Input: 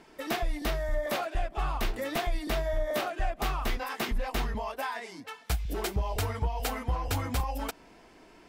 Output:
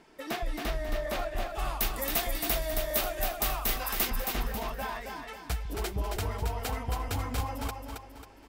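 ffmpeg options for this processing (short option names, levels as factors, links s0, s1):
-filter_complex "[0:a]asettb=1/sr,asplit=3[s0][s1][s2];[s0]atrim=end=1.494[s3];[s1]atrim=start=1.49:end=4.1,asetpts=PTS-STARTPTS,afade=t=in:d=0.004:c=qsin,afade=t=out:st=2.606:d=0.004:c=qsin,aemphasis=mode=production:type=75fm[s4];[s2]atrim=start=4.096[s5];[s3][s4]acrossfade=d=0.004:c1=hsin:c2=qsin[s6];[s6][s5]acrossfade=d=0.004:c1=qsin:c2=hsin,aecho=1:1:271|542|813|1084|1355:0.562|0.231|0.0945|0.0388|0.0159,volume=0.708"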